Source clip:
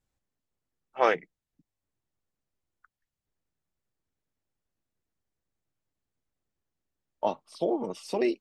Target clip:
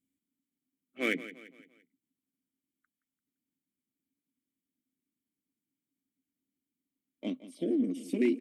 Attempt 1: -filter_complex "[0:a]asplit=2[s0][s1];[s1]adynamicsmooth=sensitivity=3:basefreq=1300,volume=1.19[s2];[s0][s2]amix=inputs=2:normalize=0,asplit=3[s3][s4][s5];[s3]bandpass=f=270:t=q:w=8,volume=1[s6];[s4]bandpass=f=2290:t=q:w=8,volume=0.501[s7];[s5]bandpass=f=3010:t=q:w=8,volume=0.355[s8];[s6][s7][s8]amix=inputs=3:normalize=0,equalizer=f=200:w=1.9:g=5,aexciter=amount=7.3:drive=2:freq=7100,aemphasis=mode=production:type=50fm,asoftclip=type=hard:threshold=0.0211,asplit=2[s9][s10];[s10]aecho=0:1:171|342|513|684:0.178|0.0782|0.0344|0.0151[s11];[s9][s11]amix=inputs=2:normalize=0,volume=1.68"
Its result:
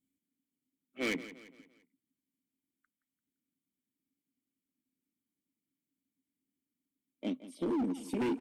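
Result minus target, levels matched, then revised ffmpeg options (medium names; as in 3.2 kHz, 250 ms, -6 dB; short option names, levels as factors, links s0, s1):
hard clipper: distortion +26 dB
-filter_complex "[0:a]asplit=2[s0][s1];[s1]adynamicsmooth=sensitivity=3:basefreq=1300,volume=1.19[s2];[s0][s2]amix=inputs=2:normalize=0,asplit=3[s3][s4][s5];[s3]bandpass=f=270:t=q:w=8,volume=1[s6];[s4]bandpass=f=2290:t=q:w=8,volume=0.501[s7];[s5]bandpass=f=3010:t=q:w=8,volume=0.355[s8];[s6][s7][s8]amix=inputs=3:normalize=0,equalizer=f=200:w=1.9:g=5,aexciter=amount=7.3:drive=2:freq=7100,aemphasis=mode=production:type=50fm,asoftclip=type=hard:threshold=0.0708,asplit=2[s9][s10];[s10]aecho=0:1:171|342|513|684:0.178|0.0782|0.0344|0.0151[s11];[s9][s11]amix=inputs=2:normalize=0,volume=1.68"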